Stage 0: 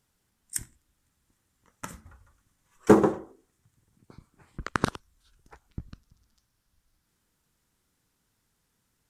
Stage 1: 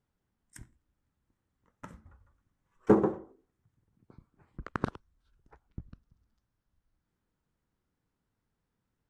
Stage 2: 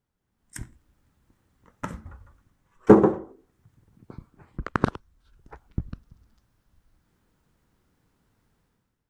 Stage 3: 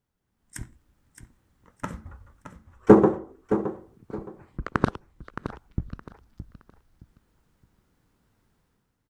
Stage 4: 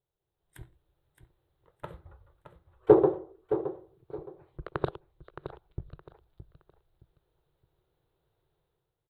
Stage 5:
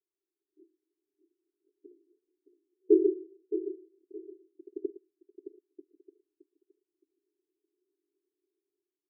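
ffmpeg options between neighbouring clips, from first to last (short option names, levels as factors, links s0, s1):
-af "lowpass=f=1100:p=1,volume=0.596"
-af "dynaudnorm=f=130:g=7:m=4.73"
-af "aecho=1:1:618|1236|1854:0.282|0.0761|0.0205"
-af "firequalizer=gain_entry='entry(110,0);entry(150,4);entry(220,-22);entry(350,7);entry(650,6);entry(1100,-1);entry(2000,-4);entry(3800,6);entry(5600,-23);entry(11000,-1)':delay=0.05:min_phase=1,volume=0.355"
-af "asuperpass=centerf=340:order=12:qfactor=2.4"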